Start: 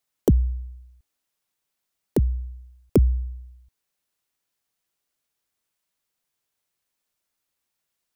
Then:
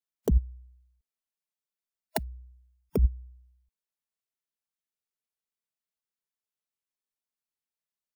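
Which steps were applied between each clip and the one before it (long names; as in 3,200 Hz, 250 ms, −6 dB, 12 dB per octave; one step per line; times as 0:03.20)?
noise reduction from a noise print of the clip's start 26 dB
comb filter 4.6 ms, depth 45%
compressor whose output falls as the input rises −23 dBFS, ratio −1
level +2.5 dB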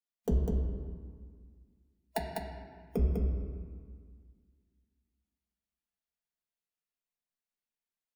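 flanger 0.38 Hz, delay 8.1 ms, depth 7 ms, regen −59%
single-tap delay 200 ms −4.5 dB
convolution reverb RT60 1.8 s, pre-delay 4 ms, DRR −3.5 dB
level −4 dB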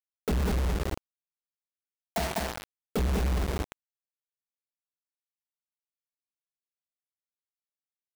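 log-companded quantiser 2 bits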